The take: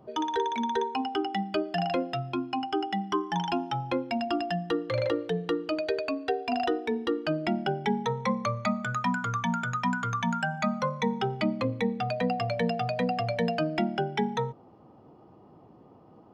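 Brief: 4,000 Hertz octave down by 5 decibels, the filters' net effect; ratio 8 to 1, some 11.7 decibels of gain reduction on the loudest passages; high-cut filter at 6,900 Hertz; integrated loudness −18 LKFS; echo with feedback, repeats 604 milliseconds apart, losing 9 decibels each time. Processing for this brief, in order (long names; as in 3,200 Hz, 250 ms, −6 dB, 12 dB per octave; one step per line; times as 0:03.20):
low-pass filter 6,900 Hz
parametric band 4,000 Hz −7 dB
downward compressor 8 to 1, threshold −35 dBFS
repeating echo 604 ms, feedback 35%, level −9 dB
level +20.5 dB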